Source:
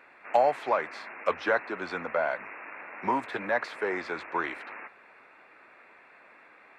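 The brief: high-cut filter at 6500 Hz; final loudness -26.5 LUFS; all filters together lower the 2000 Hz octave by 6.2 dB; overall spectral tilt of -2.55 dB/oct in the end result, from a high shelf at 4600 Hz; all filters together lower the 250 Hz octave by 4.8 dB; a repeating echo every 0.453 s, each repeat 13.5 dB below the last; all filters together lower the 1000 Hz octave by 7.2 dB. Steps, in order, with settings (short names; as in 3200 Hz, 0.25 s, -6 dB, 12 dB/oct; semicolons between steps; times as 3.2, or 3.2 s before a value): LPF 6500 Hz; bell 250 Hz -6 dB; bell 1000 Hz -8.5 dB; bell 2000 Hz -3.5 dB; high shelf 4600 Hz -6.5 dB; feedback echo 0.453 s, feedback 21%, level -13.5 dB; gain +9 dB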